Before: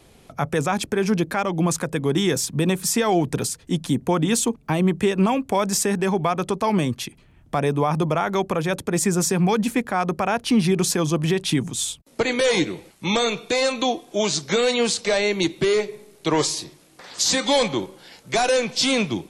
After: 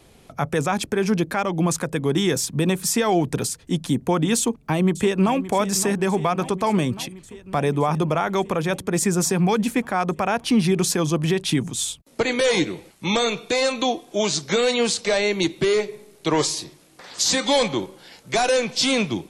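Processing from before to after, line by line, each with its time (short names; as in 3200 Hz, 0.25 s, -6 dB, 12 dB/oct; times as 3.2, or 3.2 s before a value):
4.38–5.35 echo throw 0.57 s, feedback 75%, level -14 dB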